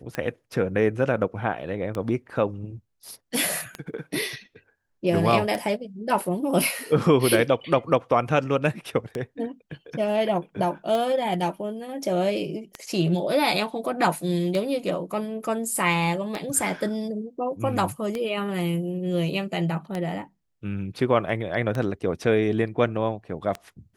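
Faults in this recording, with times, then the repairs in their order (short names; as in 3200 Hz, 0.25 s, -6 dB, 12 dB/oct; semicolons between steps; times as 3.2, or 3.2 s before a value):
tick 33 1/3 rpm -15 dBFS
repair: de-click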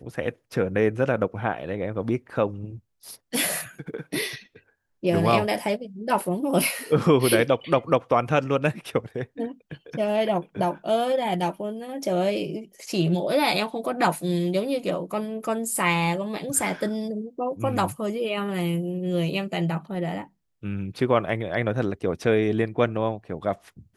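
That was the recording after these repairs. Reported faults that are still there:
none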